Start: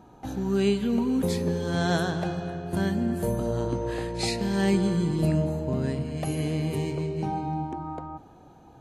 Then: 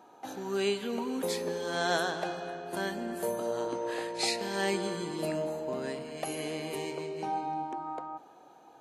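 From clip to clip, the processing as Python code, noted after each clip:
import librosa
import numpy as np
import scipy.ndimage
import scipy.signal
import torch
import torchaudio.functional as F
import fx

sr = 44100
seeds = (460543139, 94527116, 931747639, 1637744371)

y = scipy.signal.sosfilt(scipy.signal.butter(2, 450.0, 'highpass', fs=sr, output='sos'), x)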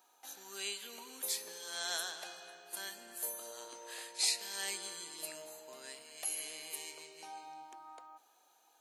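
y = np.diff(x, prepend=0.0)
y = F.gain(torch.from_numpy(y), 3.5).numpy()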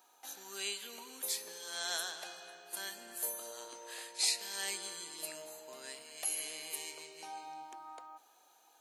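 y = fx.rider(x, sr, range_db=3, speed_s=2.0)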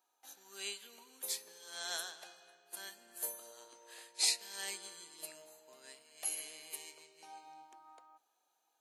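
y = fx.upward_expand(x, sr, threshold_db=-59.0, expansion=1.5)
y = F.gain(torch.from_numpy(y), 1.0).numpy()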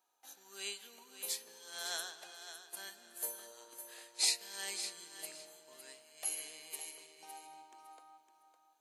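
y = fx.echo_feedback(x, sr, ms=558, feedback_pct=21, wet_db=-10.5)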